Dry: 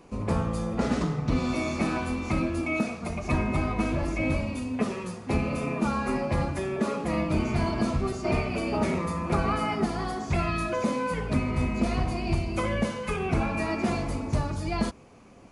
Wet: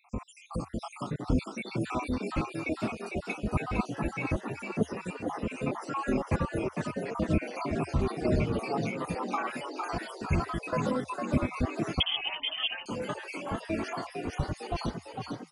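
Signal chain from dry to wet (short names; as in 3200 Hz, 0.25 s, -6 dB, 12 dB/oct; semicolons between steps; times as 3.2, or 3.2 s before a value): random spectral dropouts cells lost 76%; frequency-shifting echo 0.453 s, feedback 57%, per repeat +75 Hz, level -5.5 dB; 12–12.86 inverted band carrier 3300 Hz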